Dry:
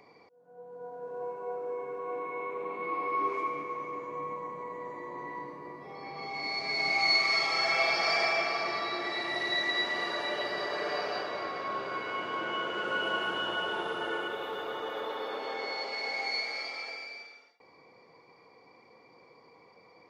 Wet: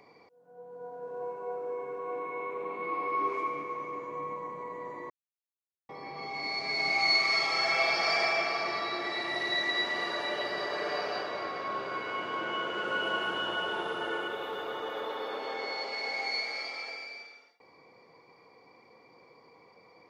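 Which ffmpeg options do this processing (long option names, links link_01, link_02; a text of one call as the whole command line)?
ffmpeg -i in.wav -filter_complex "[0:a]asplit=3[link_01][link_02][link_03];[link_01]atrim=end=5.1,asetpts=PTS-STARTPTS,afade=type=out:start_time=5.096:duration=0.004:curve=hsin[link_04];[link_02]atrim=start=5.1:end=5.89,asetpts=PTS-STARTPTS,volume=0[link_05];[link_03]atrim=start=5.89,asetpts=PTS-STARTPTS,afade=type=in:duration=0.004:curve=hsin[link_06];[link_04][link_05][link_06]concat=n=3:v=0:a=1" out.wav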